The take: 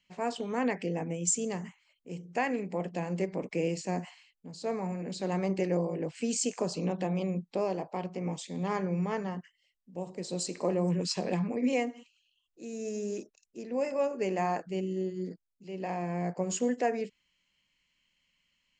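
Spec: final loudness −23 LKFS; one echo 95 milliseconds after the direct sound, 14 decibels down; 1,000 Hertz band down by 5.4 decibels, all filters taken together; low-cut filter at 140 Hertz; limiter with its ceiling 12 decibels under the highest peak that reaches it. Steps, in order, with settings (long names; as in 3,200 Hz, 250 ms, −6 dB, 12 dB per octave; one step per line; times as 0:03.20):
high-pass filter 140 Hz
parametric band 1,000 Hz −8.5 dB
brickwall limiter −27.5 dBFS
single-tap delay 95 ms −14 dB
level +14 dB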